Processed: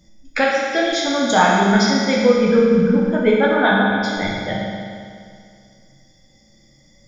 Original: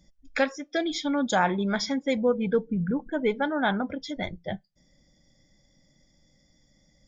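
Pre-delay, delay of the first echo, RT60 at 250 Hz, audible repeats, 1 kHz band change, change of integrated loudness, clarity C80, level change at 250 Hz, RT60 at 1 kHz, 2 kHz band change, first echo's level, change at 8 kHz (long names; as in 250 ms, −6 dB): 9 ms, no echo audible, 2.2 s, no echo audible, +11.0 dB, +11.0 dB, 1.0 dB, +10.0 dB, 2.2 s, +12.0 dB, no echo audible, can't be measured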